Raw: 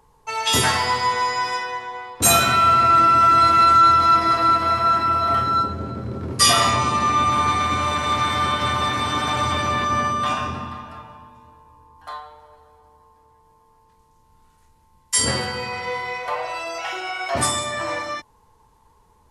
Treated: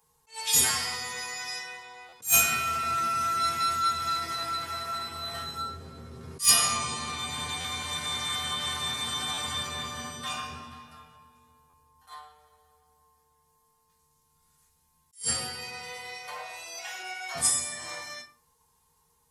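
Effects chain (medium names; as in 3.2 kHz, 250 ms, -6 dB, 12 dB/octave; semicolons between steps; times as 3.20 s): reverberation RT60 0.40 s, pre-delay 3 ms, DRR -5 dB; wavefolder -0.5 dBFS; pre-emphasis filter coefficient 0.9; buffer glitch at 2.08/7.60/9.33/11.69 s, samples 512, times 3; attacks held to a fixed rise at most 250 dB/s; trim -3.5 dB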